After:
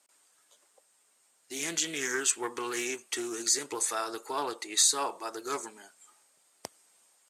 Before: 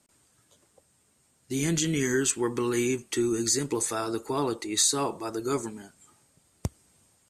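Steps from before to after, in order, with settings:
high-pass filter 610 Hz 12 dB per octave
highs frequency-modulated by the lows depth 0.11 ms

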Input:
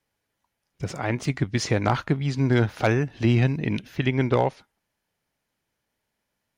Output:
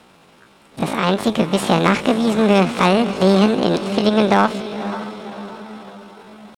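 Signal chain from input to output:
compressor on every frequency bin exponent 0.6
high-shelf EQ 4,400 Hz −10.5 dB
on a send: feedback delay with all-pass diffusion 538 ms, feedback 50%, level −11.5 dB
on the sum: pitch shifter +8.5 semitones
level +4.5 dB

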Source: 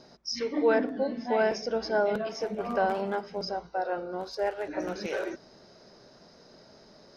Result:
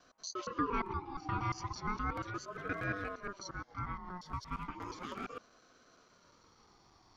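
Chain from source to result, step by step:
reversed piece by piece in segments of 117 ms
ring modulator whose carrier an LFO sweeps 710 Hz, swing 25%, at 0.35 Hz
level −7 dB

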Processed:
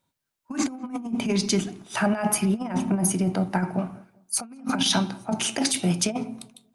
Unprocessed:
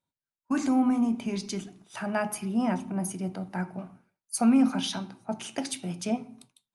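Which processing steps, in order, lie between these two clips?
0:04.81–0:06.22: high-shelf EQ 3,600 Hz +3.5 dB
compressor whose output falls as the input rises −31 dBFS, ratio −0.5
feedback echo with a low-pass in the loop 194 ms, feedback 33%, low-pass 1,300 Hz, level −22 dB
level +7 dB

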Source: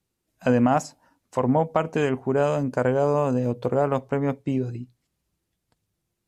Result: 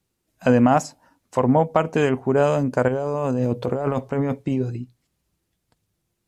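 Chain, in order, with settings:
0:02.88–0:04.62: compressor whose output falls as the input rises −26 dBFS, ratio −1
level +3.5 dB

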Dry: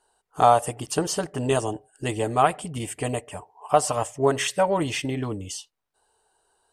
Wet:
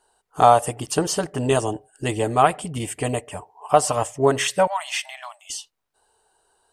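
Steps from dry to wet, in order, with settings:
0:04.67–0:05.50: linear-phase brick-wall high-pass 600 Hz
level +3 dB

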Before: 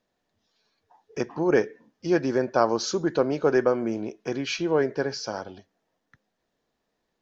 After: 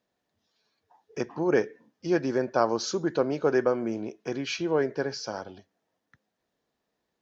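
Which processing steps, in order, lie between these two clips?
high-pass filter 50 Hz
level −2.5 dB

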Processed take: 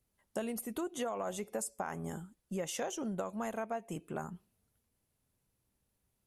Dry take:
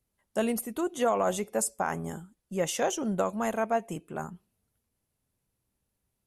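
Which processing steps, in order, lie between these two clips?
downward compressor 5 to 1, threshold −35 dBFS, peak gain reduction 12.5 dB

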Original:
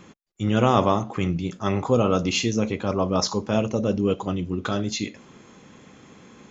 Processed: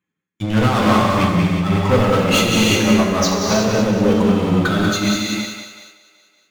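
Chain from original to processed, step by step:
spectral dynamics exaggerated over time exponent 1.5
high-pass filter 79 Hz 24 dB per octave
parametric band 2,100 Hz +5 dB 2.2 octaves
notch filter 5,200 Hz, Q 5.7
leveller curve on the samples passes 5
on a send: echo with a time of its own for lows and highs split 490 Hz, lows 92 ms, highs 188 ms, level −7 dB
on the sum: reverb whose tail is shaped and stops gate 390 ms flat, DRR −2.5 dB
amplitude modulation by smooth noise, depth 55%
level −7 dB

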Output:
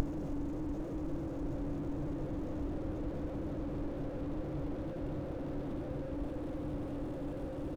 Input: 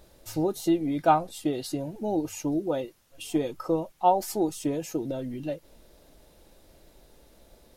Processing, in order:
high-shelf EQ 3,400 Hz +10.5 dB
spring reverb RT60 2.8 s, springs 49 ms, chirp 25 ms, DRR 5 dB
tape wow and flutter 22 cents
extreme stretch with random phases 18×, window 1.00 s, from 0:02.55
slap from a distant wall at 74 metres, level −17 dB
slew-rate limiting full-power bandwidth 3.3 Hz
level +2 dB

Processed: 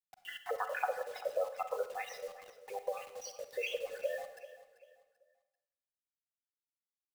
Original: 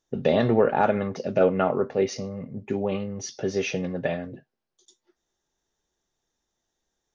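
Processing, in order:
time-frequency cells dropped at random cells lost 65%
low-pass that shuts in the quiet parts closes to 2,100 Hz, open at −17.5 dBFS
elliptic high-pass filter 530 Hz, stop band 60 dB
gate on every frequency bin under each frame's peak −20 dB strong
comb filter 4 ms, depth 67%
downward compressor 5 to 1, threshold −32 dBFS, peak gain reduction 13.5 dB
bit reduction 9 bits
repeating echo 389 ms, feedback 34%, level −16 dB
on a send at −9.5 dB: convolution reverb RT60 0.90 s, pre-delay 32 ms

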